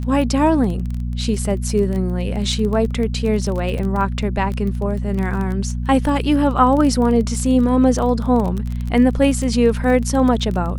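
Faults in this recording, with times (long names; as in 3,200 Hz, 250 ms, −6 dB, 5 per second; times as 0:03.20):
surface crackle 19 per second −23 dBFS
mains hum 60 Hz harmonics 4 −23 dBFS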